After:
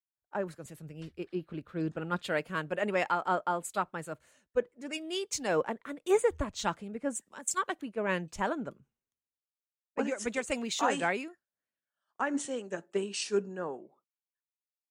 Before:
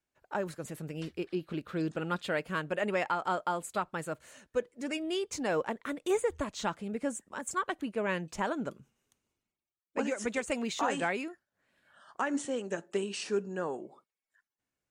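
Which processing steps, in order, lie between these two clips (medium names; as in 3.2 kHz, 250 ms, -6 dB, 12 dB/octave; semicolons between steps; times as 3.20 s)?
three bands expanded up and down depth 100%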